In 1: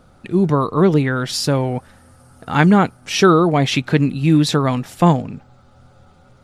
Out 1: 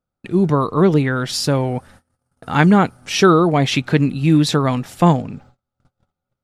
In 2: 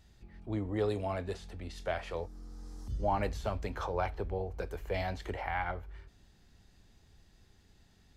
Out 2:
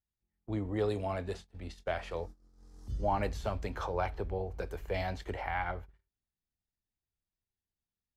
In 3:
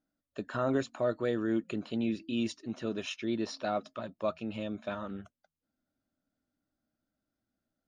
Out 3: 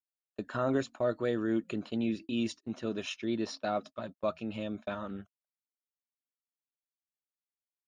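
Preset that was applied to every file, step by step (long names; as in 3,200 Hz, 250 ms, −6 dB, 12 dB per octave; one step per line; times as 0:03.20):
noise gate −43 dBFS, range −33 dB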